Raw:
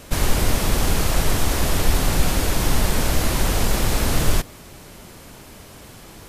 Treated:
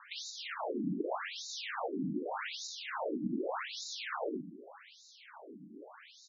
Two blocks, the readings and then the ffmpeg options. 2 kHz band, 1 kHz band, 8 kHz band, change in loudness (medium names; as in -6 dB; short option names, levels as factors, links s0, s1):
-14.5 dB, -13.0 dB, -22.5 dB, -16.5 dB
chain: -filter_complex "[0:a]equalizer=f=5400:w=0.54:g=-6.5,acompressor=threshold=0.126:ratio=6,asplit=2[s0][s1];[s1]adelay=122.4,volume=0.251,highshelf=f=4000:g=-2.76[s2];[s0][s2]amix=inputs=2:normalize=0,afftfilt=real='re*between(b*sr/1024,230*pow(5200/230,0.5+0.5*sin(2*PI*0.84*pts/sr))/1.41,230*pow(5200/230,0.5+0.5*sin(2*PI*0.84*pts/sr))*1.41)':imag='im*between(b*sr/1024,230*pow(5200/230,0.5+0.5*sin(2*PI*0.84*pts/sr))/1.41,230*pow(5200/230,0.5+0.5*sin(2*PI*0.84*pts/sr))*1.41)':win_size=1024:overlap=0.75"